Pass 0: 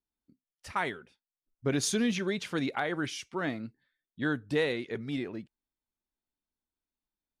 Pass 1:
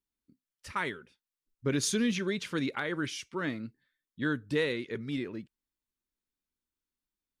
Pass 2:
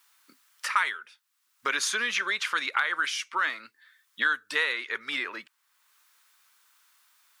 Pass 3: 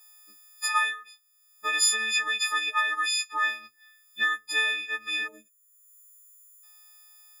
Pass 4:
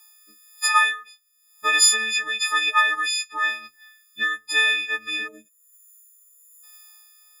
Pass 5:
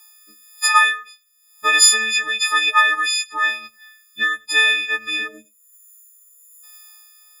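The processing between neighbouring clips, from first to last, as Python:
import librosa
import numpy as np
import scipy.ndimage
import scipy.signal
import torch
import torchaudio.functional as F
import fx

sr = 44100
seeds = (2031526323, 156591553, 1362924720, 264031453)

y1 = fx.peak_eq(x, sr, hz=730.0, db=-13.0, octaves=0.37)
y2 = fx.highpass_res(y1, sr, hz=1200.0, q=1.9)
y2 = fx.band_squash(y2, sr, depth_pct=70)
y2 = y2 * librosa.db_to_amplitude(7.0)
y3 = fx.freq_snap(y2, sr, grid_st=6)
y3 = fx.spec_box(y3, sr, start_s=5.28, length_s=1.35, low_hz=680.0, high_hz=5800.0, gain_db=-21)
y3 = y3 * librosa.db_to_amplitude(-6.0)
y4 = fx.rotary(y3, sr, hz=1.0)
y4 = y4 * librosa.db_to_amplitude(7.5)
y5 = y4 + 10.0 ** (-24.0 / 20.0) * np.pad(y4, (int(95 * sr / 1000.0), 0))[:len(y4)]
y5 = y5 * librosa.db_to_amplitude(4.0)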